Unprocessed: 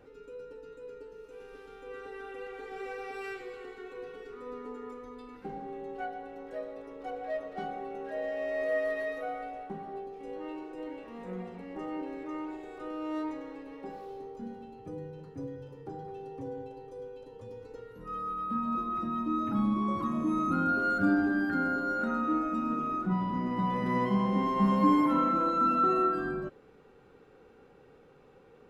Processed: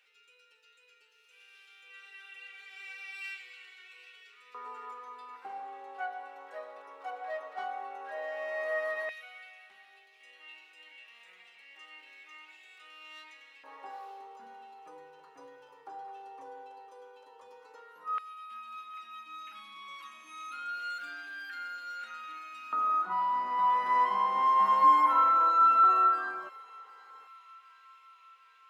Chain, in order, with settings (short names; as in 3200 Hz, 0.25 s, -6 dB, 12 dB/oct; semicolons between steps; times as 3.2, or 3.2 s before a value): LFO high-pass square 0.11 Hz 980–2600 Hz; thin delay 0.756 s, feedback 65%, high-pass 2700 Hz, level -15.5 dB